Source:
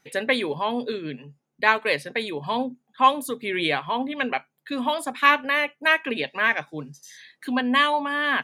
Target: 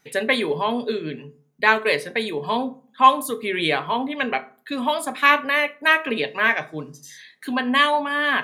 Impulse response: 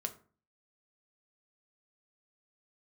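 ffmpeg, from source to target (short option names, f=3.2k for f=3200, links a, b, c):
-filter_complex "[0:a]asplit=2[a][b];[1:a]atrim=start_sample=2205,highshelf=f=9.3k:g=6[c];[b][c]afir=irnorm=-1:irlink=0,volume=5.5dB[d];[a][d]amix=inputs=2:normalize=0,volume=-6.5dB"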